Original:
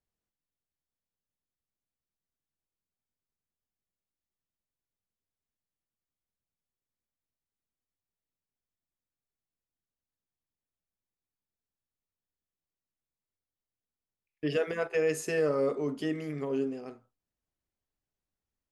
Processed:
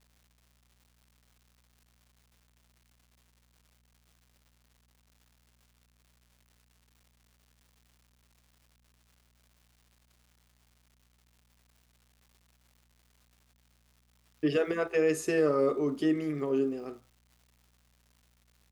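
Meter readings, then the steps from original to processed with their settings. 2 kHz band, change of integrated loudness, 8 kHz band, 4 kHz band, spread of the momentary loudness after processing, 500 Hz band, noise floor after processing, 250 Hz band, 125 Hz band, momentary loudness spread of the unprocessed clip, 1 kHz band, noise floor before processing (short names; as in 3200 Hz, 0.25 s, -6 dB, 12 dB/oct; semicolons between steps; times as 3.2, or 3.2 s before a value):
0.0 dB, +2.0 dB, 0.0 dB, 0.0 dB, 7 LU, +1.5 dB, -69 dBFS, +4.5 dB, 0.0 dB, 8 LU, +2.5 dB, under -85 dBFS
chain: small resonant body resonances 340/1200/3700 Hz, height 9 dB; buzz 60 Hz, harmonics 4, -69 dBFS -7 dB/oct; crackle 330/s -53 dBFS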